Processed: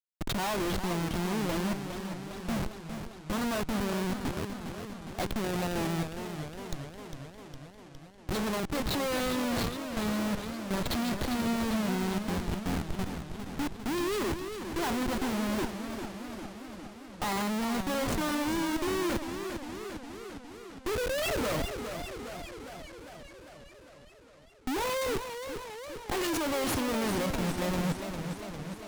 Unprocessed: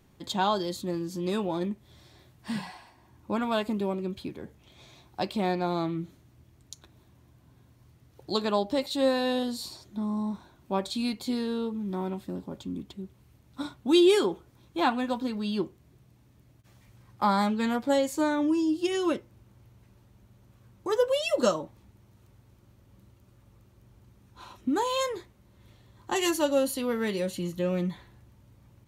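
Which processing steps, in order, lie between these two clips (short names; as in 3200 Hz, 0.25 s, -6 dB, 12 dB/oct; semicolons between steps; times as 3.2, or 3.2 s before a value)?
Schmitt trigger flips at -33.5 dBFS; warbling echo 0.405 s, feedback 69%, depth 160 cents, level -8 dB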